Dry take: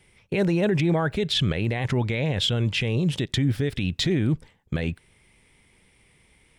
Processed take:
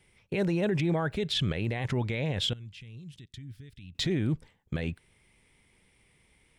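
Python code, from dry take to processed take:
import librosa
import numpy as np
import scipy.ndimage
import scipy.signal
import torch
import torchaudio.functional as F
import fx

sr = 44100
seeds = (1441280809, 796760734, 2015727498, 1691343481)

y = fx.tone_stack(x, sr, knobs='6-0-2', at=(2.53, 3.95))
y = F.gain(torch.from_numpy(y), -5.5).numpy()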